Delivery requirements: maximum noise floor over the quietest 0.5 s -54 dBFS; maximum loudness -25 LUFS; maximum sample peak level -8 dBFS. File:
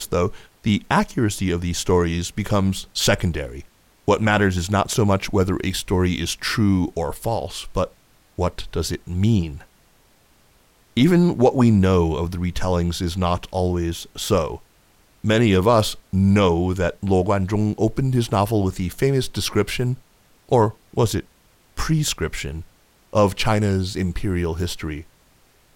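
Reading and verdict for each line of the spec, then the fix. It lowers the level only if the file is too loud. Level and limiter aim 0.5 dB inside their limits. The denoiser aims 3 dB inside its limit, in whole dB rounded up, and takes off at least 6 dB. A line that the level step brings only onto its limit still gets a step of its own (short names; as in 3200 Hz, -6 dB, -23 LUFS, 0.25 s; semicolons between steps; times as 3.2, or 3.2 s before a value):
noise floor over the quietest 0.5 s -56 dBFS: OK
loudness -21.0 LUFS: fail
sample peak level -5.0 dBFS: fail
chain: gain -4.5 dB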